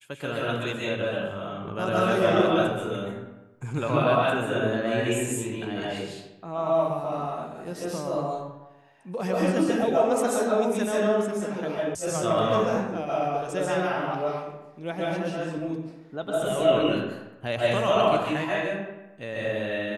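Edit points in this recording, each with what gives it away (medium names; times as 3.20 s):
11.95 s: sound stops dead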